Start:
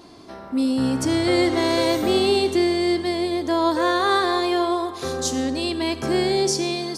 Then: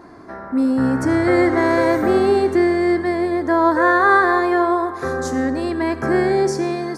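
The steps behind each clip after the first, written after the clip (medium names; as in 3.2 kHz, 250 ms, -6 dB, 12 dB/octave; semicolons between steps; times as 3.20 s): resonant high shelf 2.3 kHz -10 dB, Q 3; trim +3.5 dB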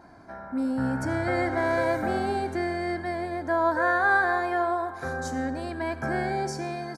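comb 1.3 ms, depth 55%; trim -8.5 dB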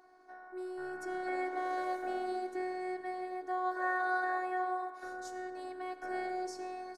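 Chebyshev high-pass 330 Hz, order 2; robot voice 367 Hz; trim -7.5 dB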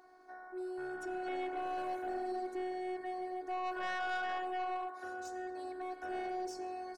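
saturation -33 dBFS, distortion -10 dB; trim +1 dB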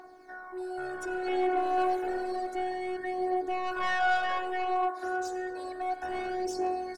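phaser 0.3 Hz, delay 3 ms, feedback 49%; trim +7 dB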